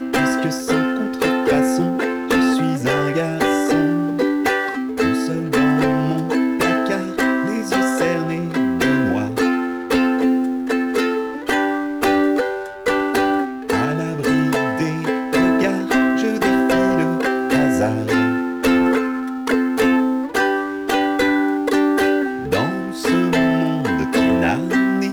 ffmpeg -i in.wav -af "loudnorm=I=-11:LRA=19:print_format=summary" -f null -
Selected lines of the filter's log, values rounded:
Input Integrated:    -18.6 LUFS
Input True Peak:      -8.1 dBTP
Input LRA:             1.6 LU
Input Threshold:     -28.6 LUFS